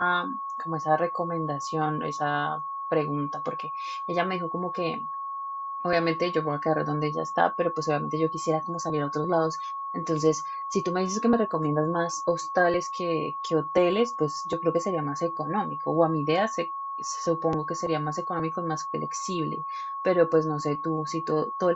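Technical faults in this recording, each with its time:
tone 1100 Hz -31 dBFS

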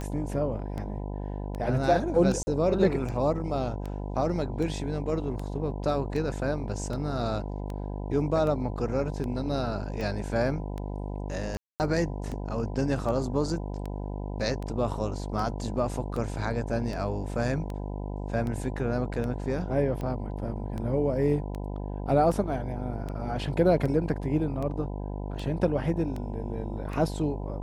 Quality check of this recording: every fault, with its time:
buzz 50 Hz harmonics 20 -34 dBFS
tick 78 rpm -23 dBFS
2.43–2.47 gap 40 ms
11.57–11.8 gap 0.229 s

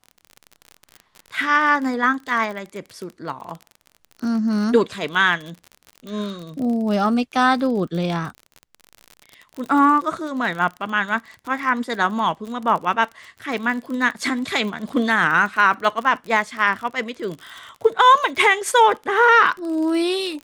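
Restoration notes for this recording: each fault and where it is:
crackle 41/s -28 dBFS

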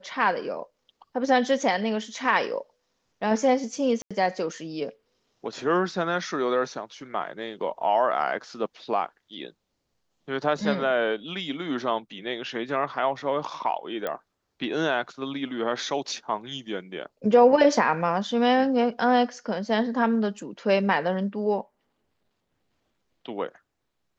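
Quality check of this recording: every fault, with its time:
4.02–4.11 gap 86 ms
14.07 pop -16 dBFS

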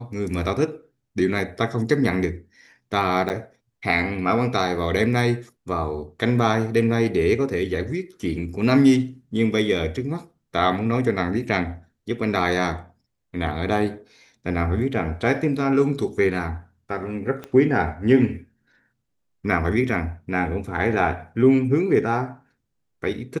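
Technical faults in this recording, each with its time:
3.29–3.3 gap 9.4 ms
17.44 pop -19 dBFS

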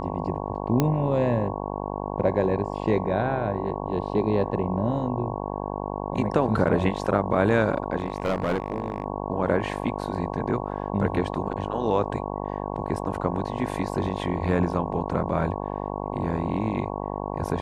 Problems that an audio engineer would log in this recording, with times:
buzz 50 Hz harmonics 22 -31 dBFS
0.8 pop -8 dBFS
7.98–9.04 clipped -20 dBFS

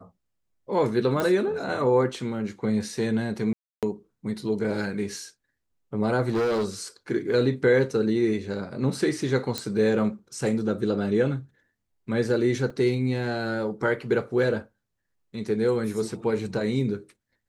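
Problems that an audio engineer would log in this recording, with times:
1.2 pop -14 dBFS
3.53–3.83 gap 0.297 s
6.29–6.65 clipped -21.5 dBFS
9.58 pop -12 dBFS
12.7 gap 3.7 ms

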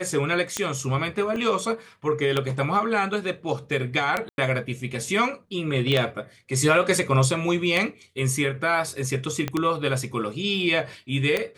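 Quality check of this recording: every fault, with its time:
tick 33 1/3 rpm -9 dBFS
1.36 gap 2 ms
4.29–4.38 gap 91 ms
5.92 pop -13 dBFS
9.48 pop -12 dBFS

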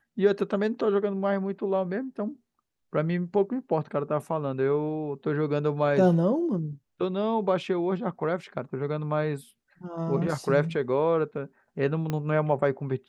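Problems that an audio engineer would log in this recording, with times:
12.1 pop -16 dBFS

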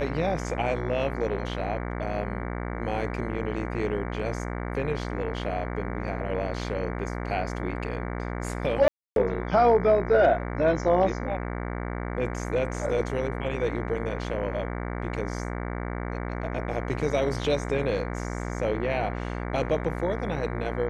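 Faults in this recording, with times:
buzz 60 Hz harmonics 38 -32 dBFS
8.88–9.16 gap 0.282 s

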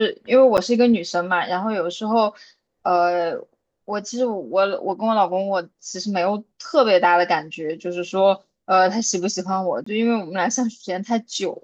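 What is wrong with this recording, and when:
0.57–0.58 gap 8.6 ms
9.84–9.86 gap 24 ms

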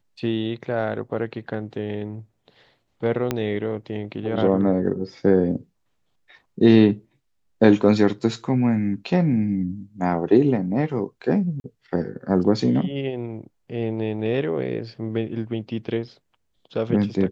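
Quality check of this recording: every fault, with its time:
3.31 pop -9 dBFS
11.6–11.64 gap 41 ms

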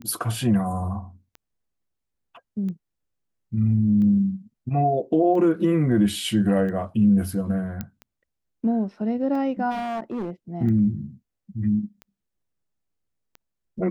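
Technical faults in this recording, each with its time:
tick 45 rpm -26 dBFS
7.81 pop -16 dBFS
9.7–10.31 clipped -25 dBFS

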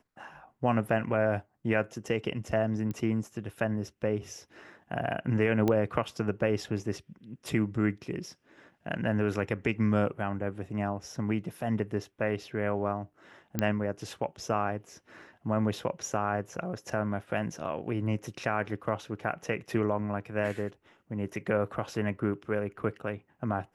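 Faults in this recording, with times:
2.91 pop -23 dBFS
5.68 pop -15 dBFS
13.59 pop -13 dBFS

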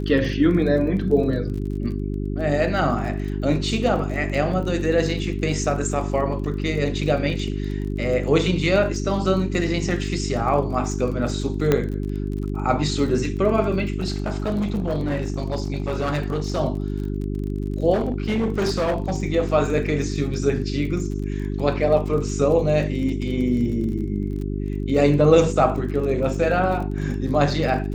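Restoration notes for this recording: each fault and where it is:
crackle 28/s -31 dBFS
hum 50 Hz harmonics 8 -26 dBFS
11.72 pop -6 dBFS
13.98–16.59 clipped -19 dBFS
17.93–19.13 clipped -18 dBFS

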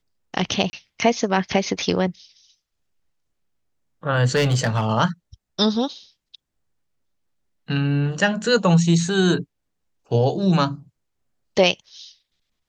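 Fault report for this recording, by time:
0.7–0.73 gap 30 ms
4.35–4.85 clipped -14.5 dBFS

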